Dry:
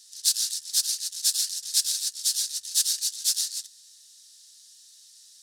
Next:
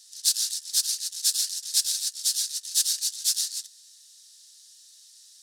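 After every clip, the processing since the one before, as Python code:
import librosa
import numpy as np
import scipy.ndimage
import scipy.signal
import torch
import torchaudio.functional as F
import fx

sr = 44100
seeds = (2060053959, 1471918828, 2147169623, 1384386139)

y = scipy.signal.sosfilt(scipy.signal.butter(4, 480.0, 'highpass', fs=sr, output='sos'), x)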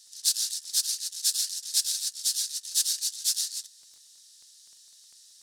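y = fx.dmg_crackle(x, sr, seeds[0], per_s=14.0, level_db=-43.0)
y = F.gain(torch.from_numpy(y), -2.0).numpy()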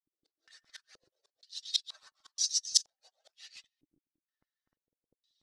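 y = fx.bin_expand(x, sr, power=2.0)
y = fx.gate_flip(y, sr, shuts_db=-21.0, range_db=-30)
y = fx.filter_held_lowpass(y, sr, hz=2.1, low_hz=320.0, high_hz=5700.0)
y = F.gain(torch.from_numpy(y), 7.5).numpy()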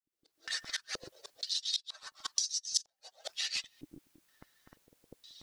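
y = fx.recorder_agc(x, sr, target_db=-19.0, rise_db_per_s=57.0, max_gain_db=30)
y = F.gain(torch.from_numpy(y), -6.0).numpy()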